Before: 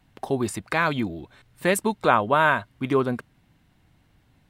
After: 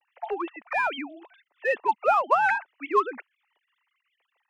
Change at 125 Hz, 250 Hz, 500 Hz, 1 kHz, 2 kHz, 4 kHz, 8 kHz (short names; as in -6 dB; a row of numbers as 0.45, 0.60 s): under -30 dB, -12.0 dB, -4.0 dB, 0.0 dB, -2.5 dB, -8.0 dB, under -20 dB